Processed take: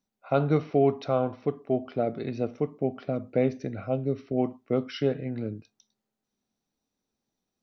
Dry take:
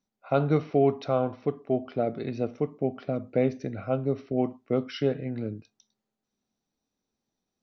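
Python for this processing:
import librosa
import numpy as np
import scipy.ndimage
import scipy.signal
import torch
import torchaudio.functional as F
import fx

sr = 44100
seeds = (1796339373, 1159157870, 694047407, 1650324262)

y = fx.peak_eq(x, sr, hz=fx.line((3.86, 1800.0), (4.26, 620.0)), db=-13.5, octaves=0.72, at=(3.86, 4.26), fade=0.02)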